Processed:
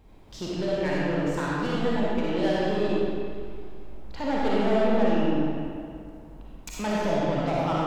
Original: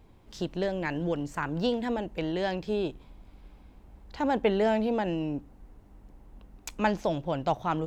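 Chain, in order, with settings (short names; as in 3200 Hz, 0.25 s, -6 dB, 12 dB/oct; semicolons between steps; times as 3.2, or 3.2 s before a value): soft clip -26.5 dBFS, distortion -10 dB; digital reverb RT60 2.2 s, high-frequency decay 0.75×, pre-delay 15 ms, DRR -6.5 dB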